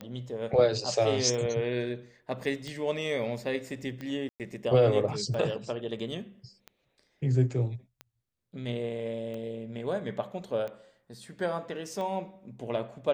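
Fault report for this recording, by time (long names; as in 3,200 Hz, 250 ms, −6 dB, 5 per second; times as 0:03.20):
scratch tick 45 rpm −26 dBFS
0:04.29–0:04.40: drop-out 108 ms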